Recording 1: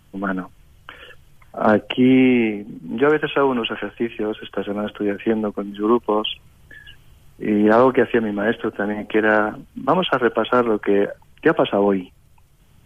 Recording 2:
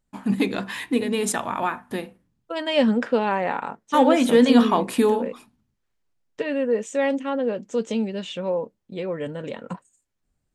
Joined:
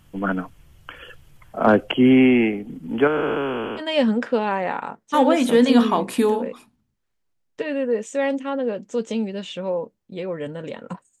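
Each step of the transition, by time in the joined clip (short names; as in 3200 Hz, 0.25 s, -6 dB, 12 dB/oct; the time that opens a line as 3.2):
recording 1
3.07–3.82 time blur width 0.679 s
3.79 switch to recording 2 from 2.59 s, crossfade 0.06 s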